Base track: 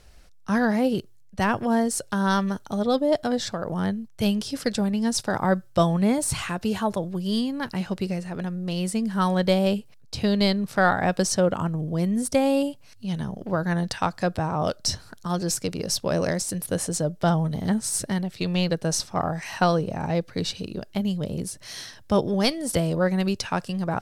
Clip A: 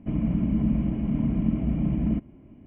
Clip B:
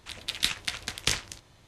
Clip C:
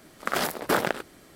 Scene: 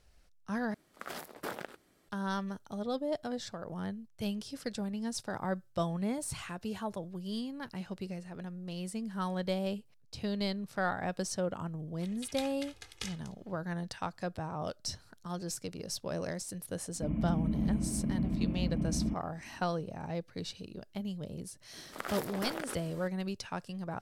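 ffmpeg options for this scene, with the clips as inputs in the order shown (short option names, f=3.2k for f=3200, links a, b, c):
-filter_complex "[3:a]asplit=2[a][b];[0:a]volume=-12.5dB[c];[2:a]aecho=1:1:2.4:0.91[d];[b]acompressor=threshold=-32dB:ratio=6:attack=3.2:release=140:knee=1:detection=peak[e];[c]asplit=2[f][g];[f]atrim=end=0.744[h];[a]atrim=end=1.35,asetpts=PTS-STARTPTS,volume=-16dB[i];[g]atrim=start=2.086[j];[d]atrim=end=1.67,asetpts=PTS-STARTPTS,volume=-17.5dB,afade=t=in:d=0.004:c=hsin,afade=t=out:st=1.666:d=0.004:c=hsin,adelay=11940[k];[1:a]atrim=end=2.66,asetpts=PTS-STARTPTS,volume=-8dB,afade=t=in:d=0.004:c=hsin,afade=t=out:st=2.656:d=0.004:c=hsin,adelay=16950[l];[e]atrim=end=1.35,asetpts=PTS-STARTPTS,volume=-2.5dB,afade=t=in:d=0.004:c=hsin,afade=t=out:st=1.346:d=0.004:c=hsin,adelay=21730[m];[h][i]acrossfade=d=0.004:c1=hsin:c2=hsin[n];[n][j]acrossfade=d=0.004:c1=hsin:c2=hsin[o];[o][k][l][m]amix=inputs=4:normalize=0"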